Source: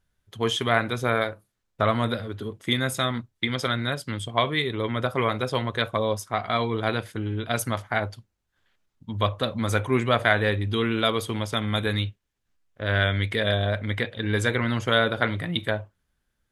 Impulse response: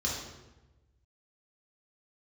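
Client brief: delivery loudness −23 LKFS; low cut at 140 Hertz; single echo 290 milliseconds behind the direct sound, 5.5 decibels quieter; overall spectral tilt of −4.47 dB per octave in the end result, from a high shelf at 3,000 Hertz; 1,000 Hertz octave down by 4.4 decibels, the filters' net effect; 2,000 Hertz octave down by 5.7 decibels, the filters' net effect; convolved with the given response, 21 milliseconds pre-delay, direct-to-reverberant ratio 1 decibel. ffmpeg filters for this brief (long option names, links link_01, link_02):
-filter_complex "[0:a]highpass=140,equalizer=frequency=1000:width_type=o:gain=-4.5,equalizer=frequency=2000:width_type=o:gain=-9,highshelf=frequency=3000:gain=9,aecho=1:1:290:0.531,asplit=2[link_01][link_02];[1:a]atrim=start_sample=2205,adelay=21[link_03];[link_02][link_03]afir=irnorm=-1:irlink=0,volume=-7.5dB[link_04];[link_01][link_04]amix=inputs=2:normalize=0,volume=-0.5dB"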